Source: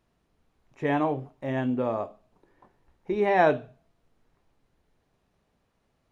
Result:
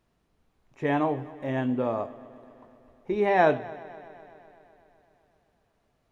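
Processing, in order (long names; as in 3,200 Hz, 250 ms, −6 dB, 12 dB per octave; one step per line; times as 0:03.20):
echo machine with several playback heads 126 ms, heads first and second, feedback 67%, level −23.5 dB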